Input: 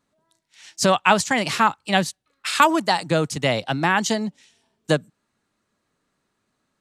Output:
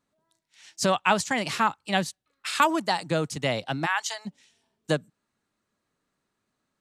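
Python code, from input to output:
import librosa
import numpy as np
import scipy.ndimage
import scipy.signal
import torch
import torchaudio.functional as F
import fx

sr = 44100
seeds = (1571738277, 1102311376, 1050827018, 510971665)

y = fx.highpass(x, sr, hz=810.0, slope=24, at=(3.85, 4.25), fade=0.02)
y = y * librosa.db_to_amplitude(-5.5)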